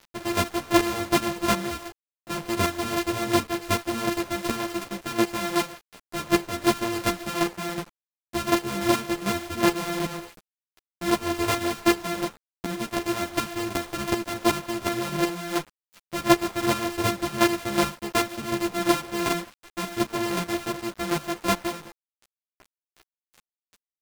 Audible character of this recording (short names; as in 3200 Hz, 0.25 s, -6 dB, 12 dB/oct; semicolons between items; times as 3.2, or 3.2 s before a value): a buzz of ramps at a fixed pitch in blocks of 128 samples; chopped level 2.7 Hz, depth 65%, duty 15%; a quantiser's noise floor 8-bit, dither none; a shimmering, thickened sound